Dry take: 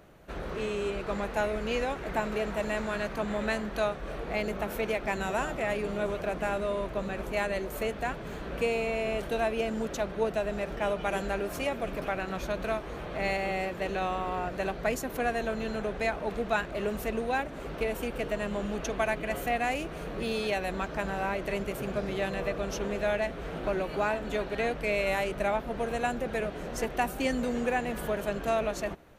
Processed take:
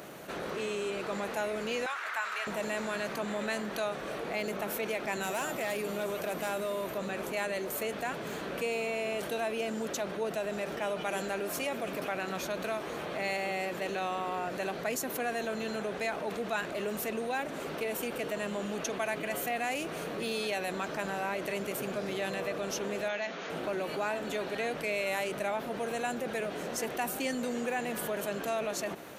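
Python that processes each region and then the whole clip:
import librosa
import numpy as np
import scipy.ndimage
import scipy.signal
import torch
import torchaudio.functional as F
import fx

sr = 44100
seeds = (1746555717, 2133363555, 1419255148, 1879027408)

y = fx.chain(x, sr, fx.highpass_res(hz=1300.0, q=2.4),
    fx.high_shelf(hz=10000.0, db=-8.0), at=(1.86, 2.47))
y = fx.high_shelf(y, sr, hz=11000.0, db=12.0, at=(5.22, 6.97), fade=0.02)
y = fx.overload_stage(y, sr, gain_db=24.5, at=(5.22, 6.97), fade=0.02)
y = fx.dmg_tone(y, sr, hz=13000.0, level_db=-61.0, at=(5.22, 6.97), fade=0.02)
y = fx.chain(y, sr, fx.brickwall_bandpass(low_hz=160.0, high_hz=7100.0),
    fx.peak_eq(hz=330.0, db=-7.5, octaves=2.1), at=(23.08, 23.5))
y = scipy.signal.sosfilt(scipy.signal.butter(2, 180.0, 'highpass', fs=sr, output='sos'), y)
y = fx.high_shelf(y, sr, hz=4100.0, db=8.0)
y = fx.env_flatten(y, sr, amount_pct=50)
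y = F.gain(torch.from_numpy(y), -6.5).numpy()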